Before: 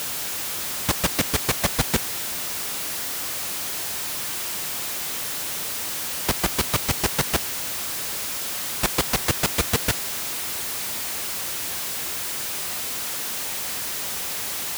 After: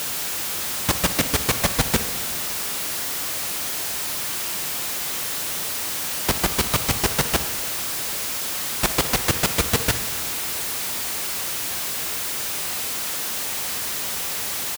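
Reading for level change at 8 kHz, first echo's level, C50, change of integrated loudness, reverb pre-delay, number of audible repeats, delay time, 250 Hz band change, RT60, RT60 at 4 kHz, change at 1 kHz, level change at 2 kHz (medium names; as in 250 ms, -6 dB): +2.0 dB, -16.0 dB, 10.5 dB, +2.0 dB, 8 ms, 1, 61 ms, +2.0 dB, 2.2 s, 1.5 s, +2.0 dB, +2.0 dB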